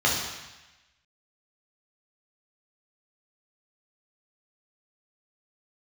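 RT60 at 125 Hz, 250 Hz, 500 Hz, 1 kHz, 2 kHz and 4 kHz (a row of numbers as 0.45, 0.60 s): 1.1, 0.95, 0.95, 1.1, 1.2, 1.1 s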